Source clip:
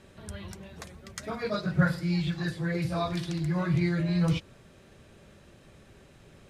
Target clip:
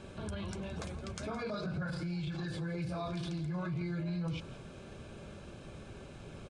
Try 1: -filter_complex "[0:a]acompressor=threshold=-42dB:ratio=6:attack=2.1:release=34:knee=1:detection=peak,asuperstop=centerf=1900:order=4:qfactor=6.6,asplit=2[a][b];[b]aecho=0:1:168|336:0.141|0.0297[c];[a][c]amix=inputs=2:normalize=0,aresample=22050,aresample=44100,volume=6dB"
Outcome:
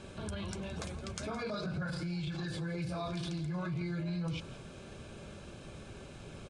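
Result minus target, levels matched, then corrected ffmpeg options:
8000 Hz band +3.5 dB
-filter_complex "[0:a]acompressor=threshold=-42dB:ratio=6:attack=2.1:release=34:knee=1:detection=peak,asuperstop=centerf=1900:order=4:qfactor=6.6,highshelf=f=2.9k:g=-4.5,asplit=2[a][b];[b]aecho=0:1:168|336:0.141|0.0297[c];[a][c]amix=inputs=2:normalize=0,aresample=22050,aresample=44100,volume=6dB"

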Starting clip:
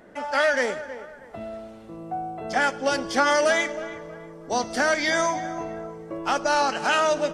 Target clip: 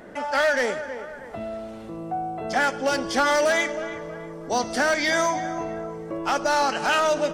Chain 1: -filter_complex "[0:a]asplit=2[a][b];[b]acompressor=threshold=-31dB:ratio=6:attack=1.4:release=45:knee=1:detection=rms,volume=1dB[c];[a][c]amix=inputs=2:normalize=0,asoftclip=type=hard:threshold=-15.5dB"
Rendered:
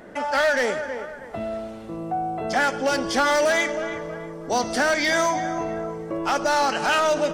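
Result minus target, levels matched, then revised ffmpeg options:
compressor: peak gain reduction -8 dB
-filter_complex "[0:a]asplit=2[a][b];[b]acompressor=threshold=-40.5dB:ratio=6:attack=1.4:release=45:knee=1:detection=rms,volume=1dB[c];[a][c]amix=inputs=2:normalize=0,asoftclip=type=hard:threshold=-15.5dB"

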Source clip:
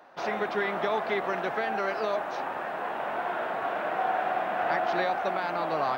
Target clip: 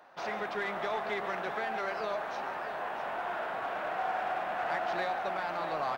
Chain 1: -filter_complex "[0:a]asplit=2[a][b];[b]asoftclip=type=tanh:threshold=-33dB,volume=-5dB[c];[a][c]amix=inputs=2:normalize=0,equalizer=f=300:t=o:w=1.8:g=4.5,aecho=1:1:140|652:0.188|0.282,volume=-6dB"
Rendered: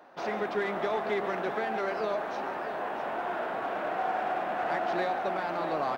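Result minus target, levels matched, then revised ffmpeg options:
250 Hz band +5.0 dB
-filter_complex "[0:a]asplit=2[a][b];[b]asoftclip=type=tanh:threshold=-33dB,volume=-5dB[c];[a][c]amix=inputs=2:normalize=0,equalizer=f=300:t=o:w=1.8:g=-4.5,aecho=1:1:140|652:0.188|0.282,volume=-6dB"

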